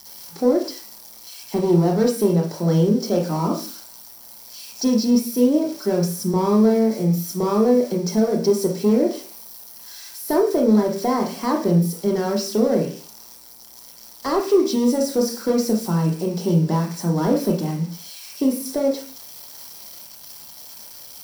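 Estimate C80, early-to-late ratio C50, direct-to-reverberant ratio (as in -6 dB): 13.5 dB, 7.5 dB, 1.5 dB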